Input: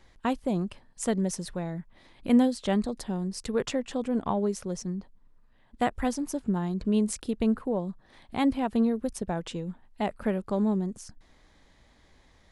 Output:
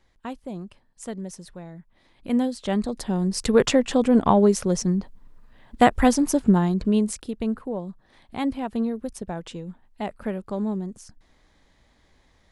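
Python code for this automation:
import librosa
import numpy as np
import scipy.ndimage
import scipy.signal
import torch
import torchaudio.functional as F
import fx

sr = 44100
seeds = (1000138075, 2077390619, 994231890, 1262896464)

y = fx.gain(x, sr, db=fx.line((1.79, -6.5), (2.68, 1.0), (3.46, 10.5), (6.51, 10.5), (7.31, -1.0)))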